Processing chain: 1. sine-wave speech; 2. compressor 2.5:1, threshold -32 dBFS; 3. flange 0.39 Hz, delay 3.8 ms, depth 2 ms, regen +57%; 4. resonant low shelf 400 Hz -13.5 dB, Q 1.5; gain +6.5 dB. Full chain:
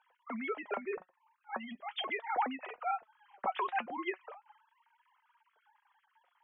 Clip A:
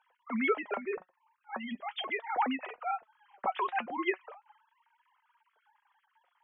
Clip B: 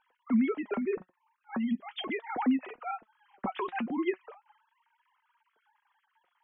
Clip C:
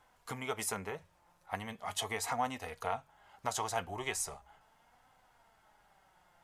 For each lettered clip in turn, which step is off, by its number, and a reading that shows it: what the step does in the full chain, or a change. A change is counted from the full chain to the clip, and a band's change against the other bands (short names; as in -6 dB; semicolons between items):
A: 2, loudness change +3.5 LU; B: 4, 250 Hz band +15.5 dB; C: 1, 500 Hz band +2.5 dB